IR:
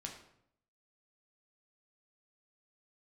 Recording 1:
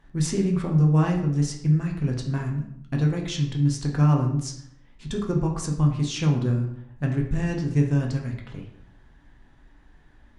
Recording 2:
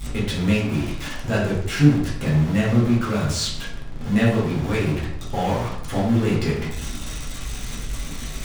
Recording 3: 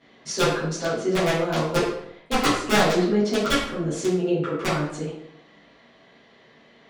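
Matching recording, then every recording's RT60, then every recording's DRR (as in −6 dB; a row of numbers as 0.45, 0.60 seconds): 1; 0.70, 0.70, 0.70 seconds; 0.5, −8.0, −12.5 decibels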